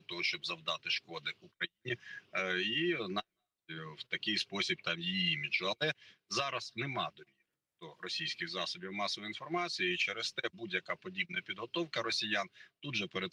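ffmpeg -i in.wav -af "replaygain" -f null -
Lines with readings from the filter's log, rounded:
track_gain = +14.6 dB
track_peak = 0.086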